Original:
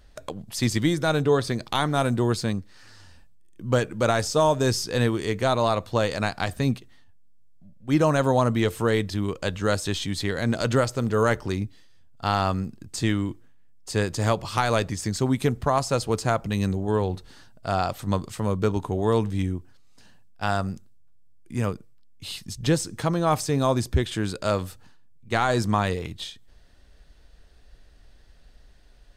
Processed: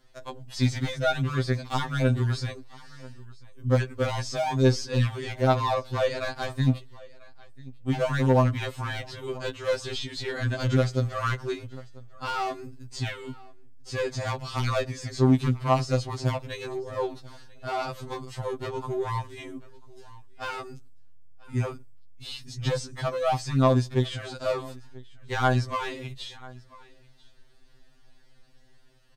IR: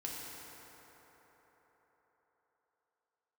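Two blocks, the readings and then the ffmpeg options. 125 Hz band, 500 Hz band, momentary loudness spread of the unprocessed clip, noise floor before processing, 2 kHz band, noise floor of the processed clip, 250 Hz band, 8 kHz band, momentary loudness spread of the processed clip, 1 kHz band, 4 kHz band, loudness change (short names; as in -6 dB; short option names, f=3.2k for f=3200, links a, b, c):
-0.5 dB, -3.5 dB, 11 LU, -52 dBFS, -3.5 dB, -53 dBFS, -4.0 dB, -8.5 dB, 17 LU, -3.5 dB, -3.5 dB, -3.0 dB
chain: -filter_complex "[0:a]aeval=exprs='0.355*(cos(1*acos(clip(val(0)/0.355,-1,1)))-cos(1*PI/2))+0.0708*(cos(2*acos(clip(val(0)/0.355,-1,1)))-cos(2*PI/2))+0.00708*(cos(8*acos(clip(val(0)/0.355,-1,1)))-cos(8*PI/2))':c=same,acrossover=split=6300[a][b];[b]acompressor=threshold=-55dB:ratio=4:attack=1:release=60[c];[a][c]amix=inputs=2:normalize=0,asplit=2[d][e];[e]aecho=0:1:991:0.0708[f];[d][f]amix=inputs=2:normalize=0,volume=17.5dB,asoftclip=hard,volume=-17.5dB,afftfilt=real='re*2.45*eq(mod(b,6),0)':imag='im*2.45*eq(mod(b,6),0)':win_size=2048:overlap=0.75"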